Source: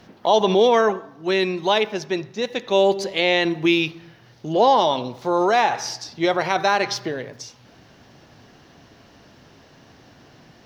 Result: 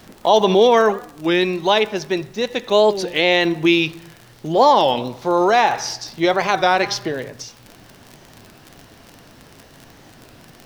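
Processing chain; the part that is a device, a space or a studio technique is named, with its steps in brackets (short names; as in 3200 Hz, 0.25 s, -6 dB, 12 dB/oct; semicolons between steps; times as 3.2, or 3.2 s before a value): warped LP (record warp 33 1/3 rpm, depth 160 cents; crackle 44/s -30 dBFS; pink noise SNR 34 dB); gain +3 dB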